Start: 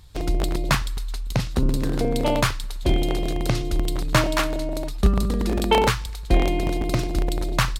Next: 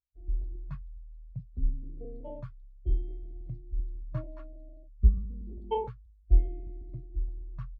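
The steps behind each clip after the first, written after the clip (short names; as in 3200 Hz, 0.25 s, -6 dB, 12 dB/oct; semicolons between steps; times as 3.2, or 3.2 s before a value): spectral expander 2.5:1; gain -5 dB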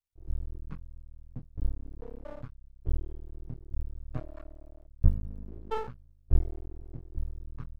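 half-wave rectifier; gain +2 dB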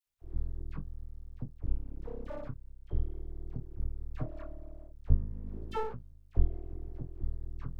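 in parallel at +3 dB: compressor, threshold -37 dBFS, peak gain reduction 22 dB; on the sum: dispersion lows, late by 62 ms, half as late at 1200 Hz; gain -4.5 dB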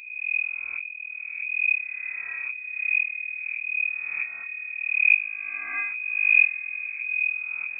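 spectral swells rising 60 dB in 1.09 s; diffused feedback echo 0.544 s, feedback 47%, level -16 dB; inverted band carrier 2500 Hz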